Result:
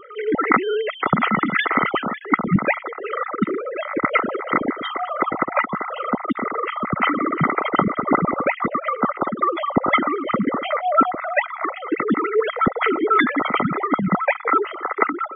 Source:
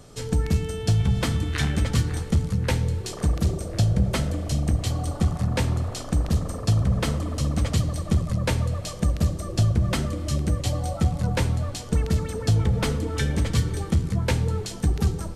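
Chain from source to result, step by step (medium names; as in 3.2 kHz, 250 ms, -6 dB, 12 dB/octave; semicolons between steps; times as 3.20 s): formants replaced by sine waves; small resonant body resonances 1.3/2 kHz, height 16 dB, ringing for 20 ms; loudest bins only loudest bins 64; trim -1 dB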